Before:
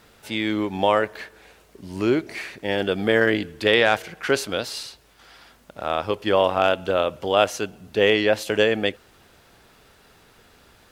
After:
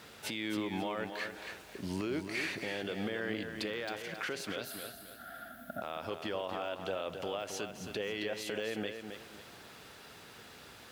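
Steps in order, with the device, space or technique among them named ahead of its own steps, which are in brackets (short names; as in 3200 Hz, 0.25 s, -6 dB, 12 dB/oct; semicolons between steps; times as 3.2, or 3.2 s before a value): broadcast voice chain (HPF 91 Hz; de-esser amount 60%; compressor 4:1, threshold -32 dBFS, peak gain reduction 15.5 dB; bell 3500 Hz +3 dB 2.2 oct; limiter -26.5 dBFS, peak gain reduction 9.5 dB); 4.64–5.82 EQ curve 140 Hz 0 dB, 250 Hz +9 dB, 460 Hz -16 dB, 680 Hz +11 dB, 1000 Hz -24 dB, 1400 Hz +8 dB, 2400 Hz -18 dB, 3500 Hz -11 dB, 5900 Hz -24 dB, 12000 Hz +8 dB; lo-fi delay 0.269 s, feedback 35%, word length 10-bit, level -7 dB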